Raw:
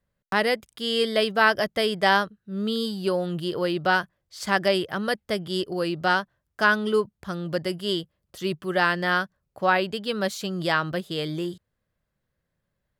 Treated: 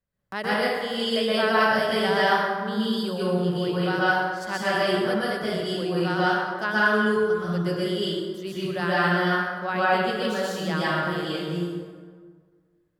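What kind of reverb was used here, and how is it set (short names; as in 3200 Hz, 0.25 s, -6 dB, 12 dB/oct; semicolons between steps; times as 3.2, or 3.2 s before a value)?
plate-style reverb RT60 1.7 s, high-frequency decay 0.55×, pre-delay 0.11 s, DRR -8.5 dB; gain -9 dB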